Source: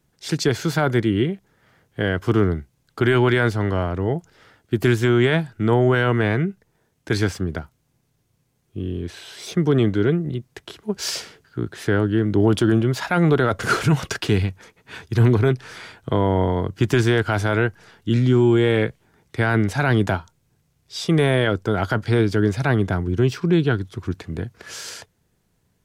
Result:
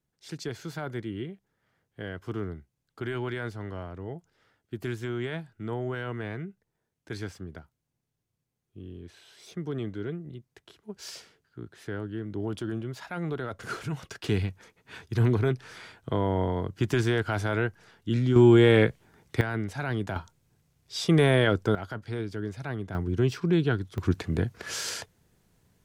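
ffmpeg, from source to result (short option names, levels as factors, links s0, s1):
-af "asetnsamples=n=441:p=0,asendcmd='14.24 volume volume -7.5dB;18.36 volume volume -0.5dB;19.41 volume volume -12dB;20.16 volume volume -3dB;21.75 volume volume -15dB;22.95 volume volume -6dB;23.98 volume volume 1dB',volume=0.168"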